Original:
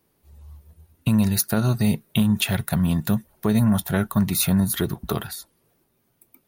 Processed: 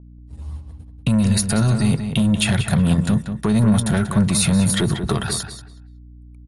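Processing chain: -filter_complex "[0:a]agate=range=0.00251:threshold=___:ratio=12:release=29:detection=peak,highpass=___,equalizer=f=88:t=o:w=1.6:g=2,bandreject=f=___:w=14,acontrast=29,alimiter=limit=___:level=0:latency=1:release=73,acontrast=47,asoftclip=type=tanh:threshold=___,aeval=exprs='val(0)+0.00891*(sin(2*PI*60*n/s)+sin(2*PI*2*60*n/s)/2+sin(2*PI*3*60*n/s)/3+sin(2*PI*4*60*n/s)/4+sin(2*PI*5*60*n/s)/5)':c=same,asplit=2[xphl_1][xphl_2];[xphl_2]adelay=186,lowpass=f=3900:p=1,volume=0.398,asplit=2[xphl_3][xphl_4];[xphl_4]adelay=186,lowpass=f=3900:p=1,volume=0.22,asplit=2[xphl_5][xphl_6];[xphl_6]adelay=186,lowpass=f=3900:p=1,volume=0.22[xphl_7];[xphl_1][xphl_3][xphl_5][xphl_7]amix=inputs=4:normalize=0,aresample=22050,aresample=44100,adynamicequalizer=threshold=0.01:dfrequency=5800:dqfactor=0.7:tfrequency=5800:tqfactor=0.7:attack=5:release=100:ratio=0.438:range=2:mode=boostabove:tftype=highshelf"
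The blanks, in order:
0.00355, 43, 6100, 0.211, 0.335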